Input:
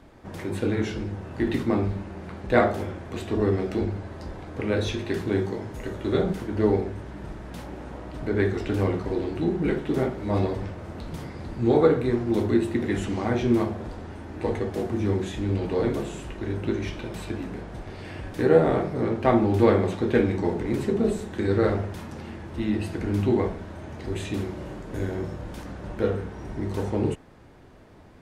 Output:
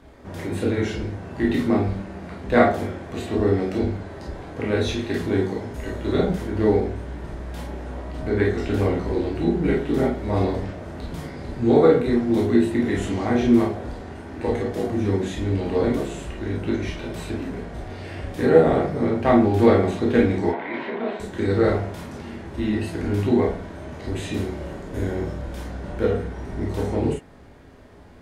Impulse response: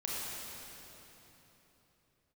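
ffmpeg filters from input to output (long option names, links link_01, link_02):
-filter_complex "[0:a]asettb=1/sr,asplit=3[link_01][link_02][link_03];[link_01]atrim=end=20.494[link_04];[link_02]atrim=start=20.49:end=21.2,asetpts=PTS-STARTPTS,afade=type=in:duration=0.004:curve=qsin,afade=type=out:start_time=0.706:duration=0.004:curve=qsin,highpass=420,equalizer=frequency=430:width_type=q:width=4:gain=-8,equalizer=frequency=650:width_type=q:width=4:gain=5,equalizer=frequency=960:width_type=q:width=4:gain=9,equalizer=frequency=1600:width_type=q:width=4:gain=5,equalizer=frequency=2200:width_type=q:width=4:gain=7,equalizer=frequency=3300:width_type=q:width=4:gain=3,lowpass=frequency=3500:width=0.5412,lowpass=frequency=3500:width=1.3066[link_05];[link_03]atrim=start=21.196[link_06];[link_04][link_05]acrossfade=duration=0.004:curve1=hsin:curve2=qsin[link_07];[link_07][link_06]acrossfade=duration=0.004:curve1=qsin:curve2=hsin[link_08];[1:a]atrim=start_sample=2205,atrim=end_sample=3969,asetrate=70560,aresample=44100[link_09];[link_08][link_09]afir=irnorm=-1:irlink=0,volume=7.5dB"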